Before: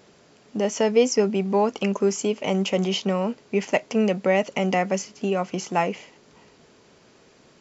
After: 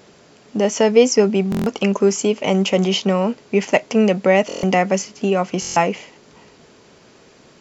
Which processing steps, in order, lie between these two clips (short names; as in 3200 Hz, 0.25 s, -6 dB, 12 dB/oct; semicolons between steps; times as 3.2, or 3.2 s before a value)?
stuck buffer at 1.5/4.47/5.6, samples 1024, times 6; gain +6 dB